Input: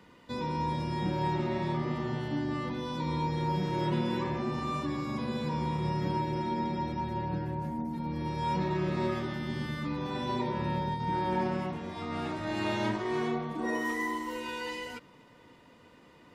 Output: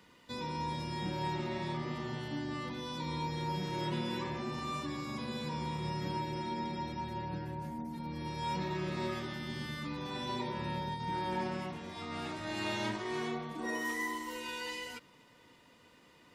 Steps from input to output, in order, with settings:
high-shelf EQ 2,100 Hz +9.5 dB
level −6.5 dB

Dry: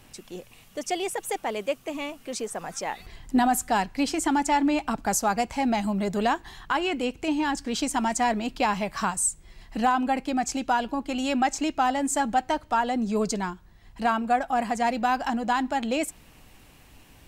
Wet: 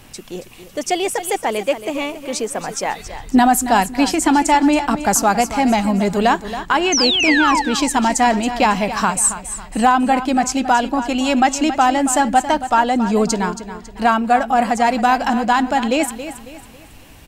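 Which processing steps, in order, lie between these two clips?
sound drawn into the spectrogram fall, 0:06.92–0:07.62, 820–6,500 Hz −26 dBFS
repeating echo 275 ms, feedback 38%, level −12 dB
level +9 dB

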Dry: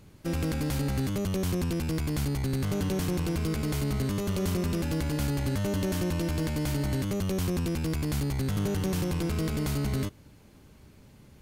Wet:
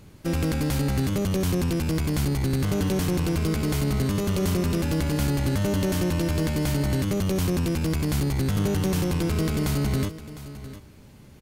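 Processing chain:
single-tap delay 706 ms −14.5 dB
level +4.5 dB

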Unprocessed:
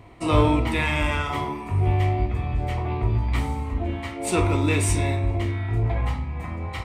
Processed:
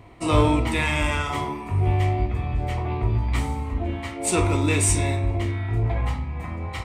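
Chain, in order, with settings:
dynamic equaliser 7,600 Hz, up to +7 dB, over −49 dBFS, Q 1.1

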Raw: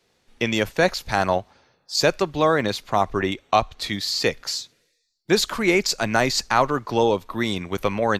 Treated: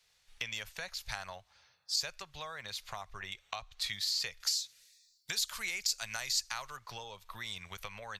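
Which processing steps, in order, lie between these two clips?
0:04.40–0:06.77: high-shelf EQ 3,000 Hz +10.5 dB
downward compressor 6 to 1, threshold −29 dBFS, peak gain reduction 17 dB
guitar amp tone stack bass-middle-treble 10-0-10

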